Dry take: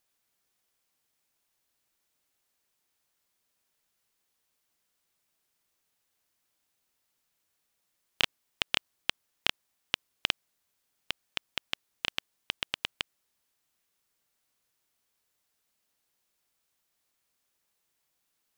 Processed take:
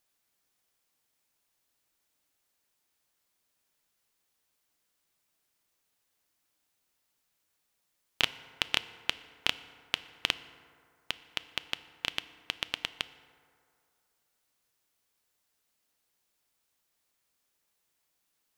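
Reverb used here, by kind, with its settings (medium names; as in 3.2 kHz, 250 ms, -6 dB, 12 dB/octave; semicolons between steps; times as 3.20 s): FDN reverb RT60 2.4 s, low-frequency decay 0.8×, high-frequency decay 0.4×, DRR 13 dB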